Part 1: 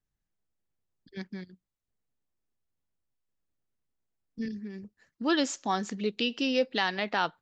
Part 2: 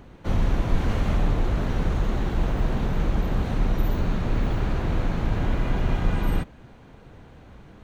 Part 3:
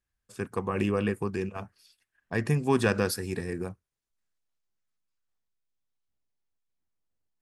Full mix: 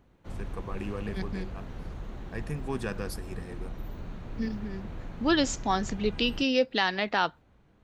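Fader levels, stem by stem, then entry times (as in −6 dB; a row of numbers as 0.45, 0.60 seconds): +2.0, −15.5, −9.5 decibels; 0.00, 0.00, 0.00 seconds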